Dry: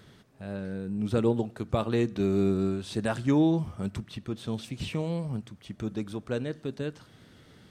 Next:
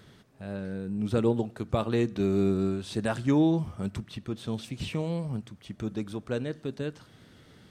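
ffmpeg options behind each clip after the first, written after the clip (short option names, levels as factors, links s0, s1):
-af anull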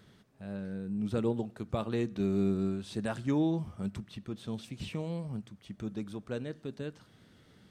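-af "equalizer=f=200:t=o:w=0.24:g=4.5,volume=0.501"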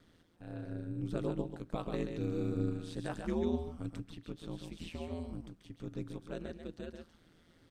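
-af "aecho=1:1:136:0.501,aeval=exprs='val(0)*sin(2*PI*83*n/s)':c=same,volume=0.75"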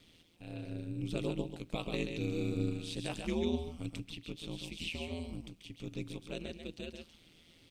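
-af "highshelf=f=2000:t=q:w=3:g=7"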